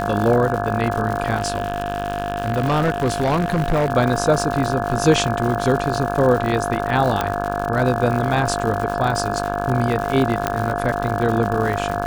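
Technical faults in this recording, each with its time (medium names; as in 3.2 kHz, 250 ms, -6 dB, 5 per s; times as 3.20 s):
buzz 50 Hz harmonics 34 -26 dBFS
crackle 150 per s -24 dBFS
whine 700 Hz -25 dBFS
1.36–3.90 s: clipped -14.5 dBFS
7.21 s: pop -6 dBFS
10.47 s: pop -5 dBFS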